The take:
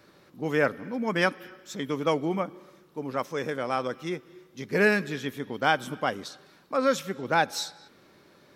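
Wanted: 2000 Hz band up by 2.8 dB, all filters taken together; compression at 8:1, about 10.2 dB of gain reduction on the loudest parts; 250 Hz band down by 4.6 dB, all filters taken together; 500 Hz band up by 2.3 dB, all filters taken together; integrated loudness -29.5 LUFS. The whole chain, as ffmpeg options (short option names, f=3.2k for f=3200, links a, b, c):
-af "equalizer=f=250:t=o:g=-8,equalizer=f=500:t=o:g=4.5,equalizer=f=2k:t=o:g=3.5,acompressor=threshold=-26dB:ratio=8,volume=3.5dB"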